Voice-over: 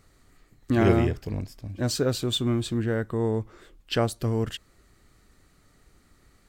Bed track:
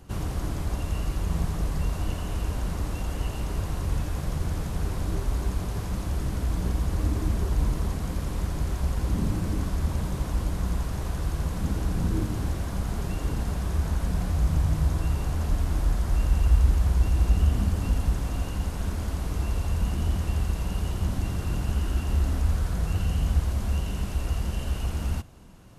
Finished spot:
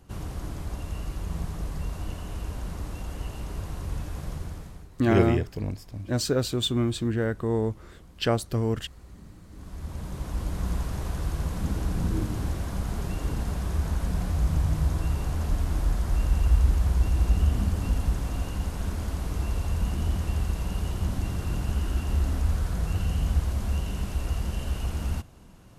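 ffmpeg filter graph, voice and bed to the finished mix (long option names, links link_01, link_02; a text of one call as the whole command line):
ffmpeg -i stem1.wav -i stem2.wav -filter_complex "[0:a]adelay=4300,volume=0dB[link_01];[1:a]volume=15.5dB,afade=type=out:start_time=4.3:duration=0.58:silence=0.149624,afade=type=in:start_time=9.49:duration=1.22:silence=0.0944061[link_02];[link_01][link_02]amix=inputs=2:normalize=0" out.wav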